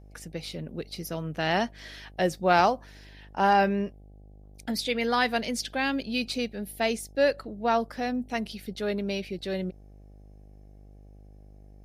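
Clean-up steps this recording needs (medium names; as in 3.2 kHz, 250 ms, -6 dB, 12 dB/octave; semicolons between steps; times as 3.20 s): de-hum 50.5 Hz, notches 16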